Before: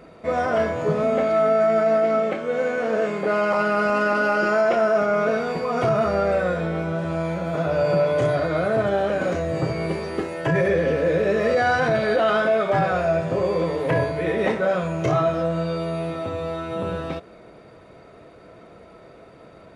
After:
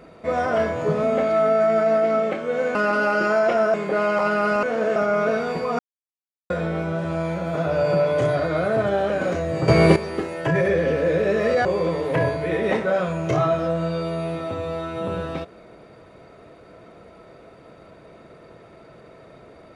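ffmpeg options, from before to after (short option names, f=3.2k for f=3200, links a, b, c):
-filter_complex "[0:a]asplit=10[a][b][c][d][e][f][g][h][i][j];[a]atrim=end=2.752[k];[b]atrim=start=3.968:end=4.962[l];[c]atrim=start=3.078:end=3.972[m];[d]atrim=start=2.748:end=3.082[n];[e]atrim=start=4.958:end=5.79,asetpts=PTS-STARTPTS,afade=t=out:st=0.828:d=0.004:c=hsin[o];[f]atrim=start=5.79:end=6.5,asetpts=PTS-STARTPTS,volume=0[p];[g]atrim=start=6.5:end=9.682,asetpts=PTS-STARTPTS,afade=t=in:d=0.004:c=hsin[q];[h]atrim=start=9.678:end=9.962,asetpts=PTS-STARTPTS,volume=11.5dB[r];[i]atrim=start=9.958:end=11.652[s];[j]atrim=start=13.398[t];[k][l]acrossfade=d=0.004:c1=hsin:c2=hsin[u];[u][m]acrossfade=d=0.004:c1=hsin:c2=hsin[v];[v][n]acrossfade=d=0.004:c1=hsin:c2=hsin[w];[o][p][q]concat=n=3:v=0:a=1[x];[w][x]acrossfade=d=0.004:c1=hsin:c2=hsin[y];[y][r]acrossfade=d=0.004:c1=hsin:c2=hsin[z];[z][s]acrossfade=d=0.004:c1=hsin:c2=hsin[aa];[aa][t]acrossfade=d=0.004:c1=hsin:c2=hsin"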